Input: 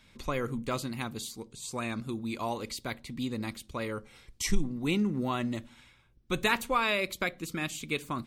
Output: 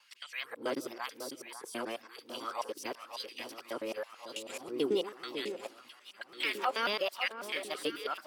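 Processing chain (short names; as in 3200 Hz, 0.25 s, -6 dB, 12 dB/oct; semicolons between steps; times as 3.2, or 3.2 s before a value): local time reversal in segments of 0.109 s; de-esser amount 85%; formant shift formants +4 st; LFO high-pass sine 0.98 Hz 310–2800 Hz; on a send: echo with dull and thin repeats by turns 0.548 s, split 1400 Hz, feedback 77%, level -9 dB; on the sum: gain -4.5 dB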